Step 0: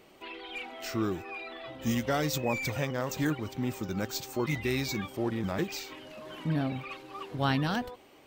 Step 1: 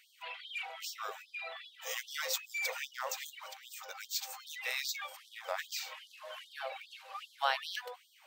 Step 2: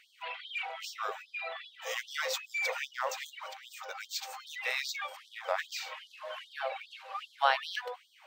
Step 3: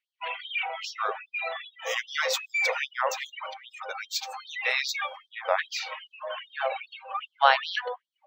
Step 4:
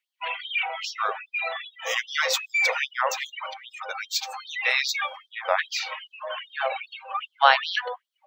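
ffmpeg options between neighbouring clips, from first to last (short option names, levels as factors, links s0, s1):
-af "afftfilt=real='re*gte(b*sr/1024,430*pow(3200/430,0.5+0.5*sin(2*PI*2.5*pts/sr)))':imag='im*gte(b*sr/1024,430*pow(3200/430,0.5+0.5*sin(2*PI*2.5*pts/sr)))':win_size=1024:overlap=0.75"
-af "lowpass=f=2600:p=1,volume=2"
-af "afftdn=nr=34:nf=-46,volume=2.24"
-af "highpass=f=610:p=1,volume=1.58"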